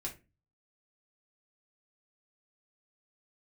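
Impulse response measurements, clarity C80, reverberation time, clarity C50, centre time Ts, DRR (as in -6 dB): 20.0 dB, 0.30 s, 12.5 dB, 14 ms, -2.5 dB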